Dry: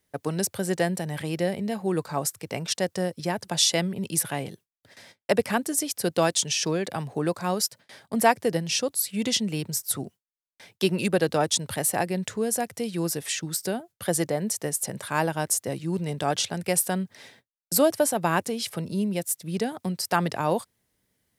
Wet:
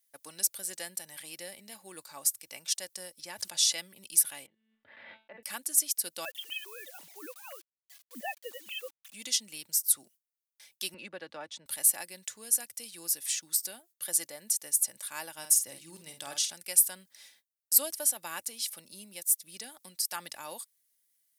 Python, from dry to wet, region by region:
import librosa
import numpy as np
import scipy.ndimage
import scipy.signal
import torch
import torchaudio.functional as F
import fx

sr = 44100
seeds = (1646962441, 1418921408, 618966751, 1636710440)

y = fx.chain(x, sr, fx.high_shelf(hz=11000.0, db=-11.0),
    fx.sustainer(db_per_s=43.0), at=(3.21, 3.78))
y = fx.chain(y, sr, fx.gaussian_blur(sigma=4.3),
    fx.comb_fb(f0_hz=220.0, decay_s=0.36, harmonics='all', damping=0.0, mix_pct=70),
    fx.pre_swell(db_per_s=34.0), at=(4.46, 5.43))
y = fx.chain(y, sr, fx.sine_speech(),
    fx.quant_dither(seeds[0], bits=8, dither='none'), at=(6.25, 9.14))
y = fx.chain(y, sr, fx.lowpass(hz=2000.0, slope=12),
    fx.band_squash(depth_pct=40), at=(10.94, 11.66))
y = fx.chain(y, sr, fx.low_shelf(hz=150.0, db=8.5),
    fx.doubler(ms=50.0, db=-8.0), at=(15.38, 16.54))
y = librosa.effects.preemphasis(y, coef=0.97, zi=[0.0])
y = fx.notch(y, sr, hz=7600.0, q=27.0)
y = y + 0.38 * np.pad(y, (int(3.5 * sr / 1000.0), 0))[:len(y)]